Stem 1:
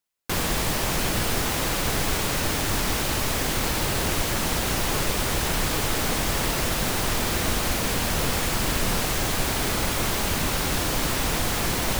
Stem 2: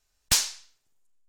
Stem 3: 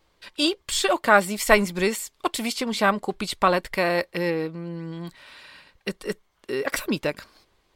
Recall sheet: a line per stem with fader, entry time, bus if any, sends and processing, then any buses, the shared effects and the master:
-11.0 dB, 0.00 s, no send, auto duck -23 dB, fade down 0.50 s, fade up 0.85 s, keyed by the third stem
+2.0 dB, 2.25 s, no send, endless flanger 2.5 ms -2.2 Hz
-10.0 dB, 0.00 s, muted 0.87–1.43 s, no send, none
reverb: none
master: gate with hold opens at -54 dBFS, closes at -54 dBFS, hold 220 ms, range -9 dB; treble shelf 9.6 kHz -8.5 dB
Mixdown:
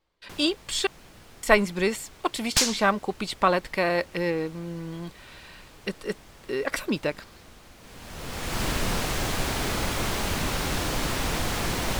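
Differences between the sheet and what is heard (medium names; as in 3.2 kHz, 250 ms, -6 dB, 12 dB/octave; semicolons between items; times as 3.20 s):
stem 1 -11.0 dB -> -2.0 dB; stem 2: missing endless flanger 2.5 ms -2.2 Hz; stem 3 -10.0 dB -> -1.5 dB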